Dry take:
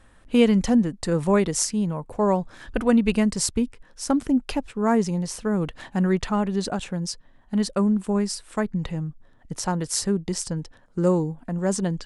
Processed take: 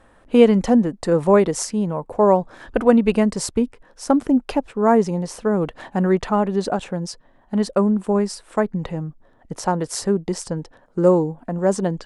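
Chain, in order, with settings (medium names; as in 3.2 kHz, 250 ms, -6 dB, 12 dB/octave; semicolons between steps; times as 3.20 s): peaking EQ 600 Hz +11 dB 2.9 oct; trim -3 dB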